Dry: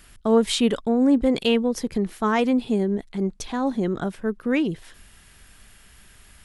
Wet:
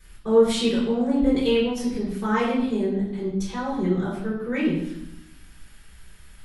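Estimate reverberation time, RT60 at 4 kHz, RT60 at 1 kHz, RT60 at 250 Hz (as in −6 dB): 0.80 s, 0.75 s, 0.80 s, 1.1 s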